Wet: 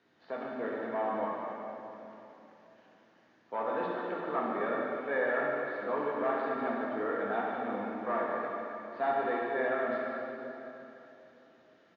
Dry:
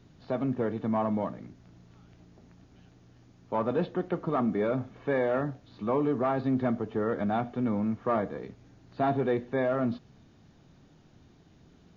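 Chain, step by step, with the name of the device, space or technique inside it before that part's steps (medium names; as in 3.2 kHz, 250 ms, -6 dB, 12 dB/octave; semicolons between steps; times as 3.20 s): station announcement (band-pass 410–4100 Hz; peaking EQ 1.7 kHz +7.5 dB 0.55 oct; loudspeakers at several distances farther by 24 m -10 dB, 51 m -9 dB; reverberation RT60 3.2 s, pre-delay 3 ms, DRR -3 dB); trim -6.5 dB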